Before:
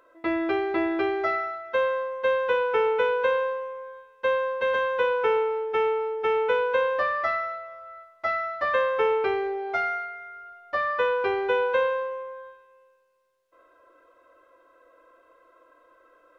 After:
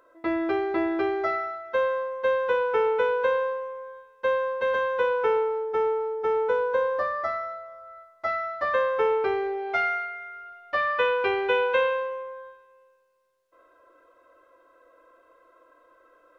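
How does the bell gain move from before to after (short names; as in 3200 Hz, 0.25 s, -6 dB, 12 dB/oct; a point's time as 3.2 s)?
bell 2700 Hz 0.92 oct
5.22 s -5 dB
5.83 s -14.5 dB
7.78 s -14.5 dB
8.31 s -5 dB
9.25 s -5 dB
9.81 s +6 dB
11.93 s +6 dB
12.45 s -2 dB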